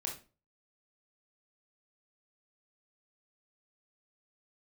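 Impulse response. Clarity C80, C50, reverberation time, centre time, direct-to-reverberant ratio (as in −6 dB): 14.5 dB, 7.5 dB, 0.35 s, 24 ms, −0.5 dB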